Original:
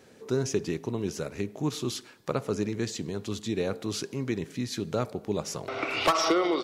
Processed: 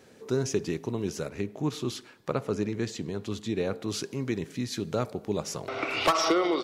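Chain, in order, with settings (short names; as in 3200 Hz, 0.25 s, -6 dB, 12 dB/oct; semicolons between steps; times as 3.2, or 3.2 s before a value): 1.29–3.88 tone controls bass 0 dB, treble -5 dB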